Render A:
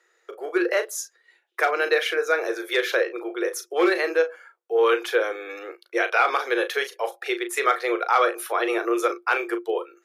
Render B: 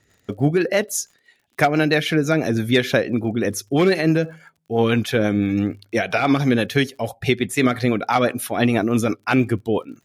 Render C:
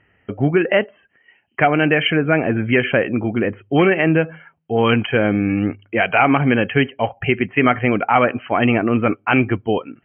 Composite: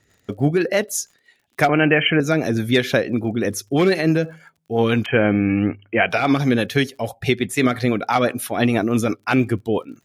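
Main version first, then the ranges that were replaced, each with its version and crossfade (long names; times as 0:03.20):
B
0:01.69–0:02.20: punch in from C
0:05.06–0:06.09: punch in from C
not used: A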